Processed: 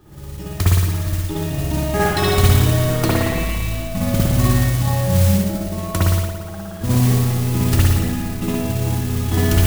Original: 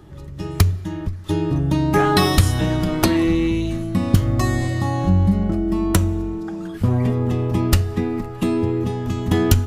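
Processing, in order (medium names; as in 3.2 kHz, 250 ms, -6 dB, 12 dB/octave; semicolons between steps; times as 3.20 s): spring tank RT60 1.5 s, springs 56 ms, chirp 20 ms, DRR -7 dB; modulation noise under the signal 14 dB; trim -6 dB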